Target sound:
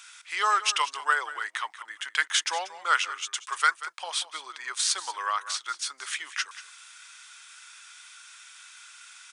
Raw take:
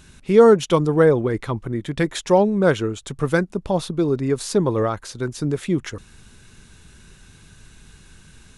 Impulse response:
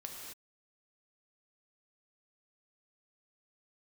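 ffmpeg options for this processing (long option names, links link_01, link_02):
-af "highpass=frequency=1300:width=0.5412,highpass=frequency=1300:width=1.3066,aecho=1:1:171:0.178,asetrate=40517,aresample=44100,volume=5dB"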